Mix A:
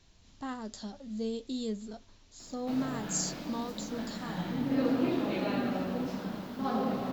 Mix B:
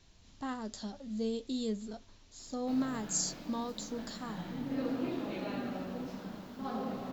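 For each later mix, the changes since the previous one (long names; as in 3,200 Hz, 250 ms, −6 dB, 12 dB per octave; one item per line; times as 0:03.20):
background −6.5 dB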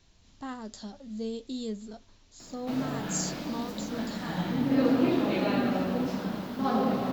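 background +11.0 dB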